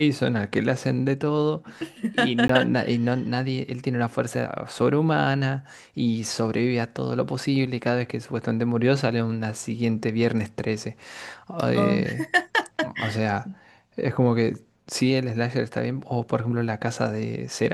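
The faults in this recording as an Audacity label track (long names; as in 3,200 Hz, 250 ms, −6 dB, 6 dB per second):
2.480000	2.490000	drop-out 14 ms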